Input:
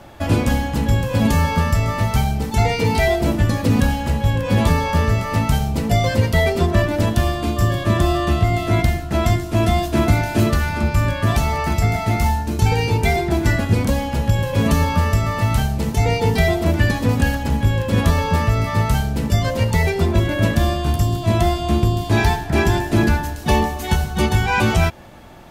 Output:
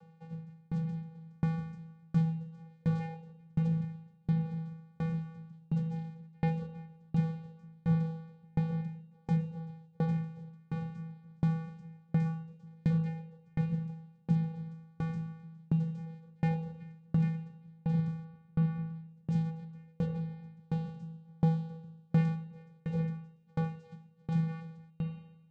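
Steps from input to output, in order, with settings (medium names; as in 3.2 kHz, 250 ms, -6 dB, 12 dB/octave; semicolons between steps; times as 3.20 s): 18.24–19.08 s: low-pass 3 kHz 12 dB/octave; vocoder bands 8, square 163 Hz; reverberation RT60 4.2 s, pre-delay 37 ms, DRR 5 dB; sawtooth tremolo in dB decaying 1.4 Hz, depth 37 dB; trim -7.5 dB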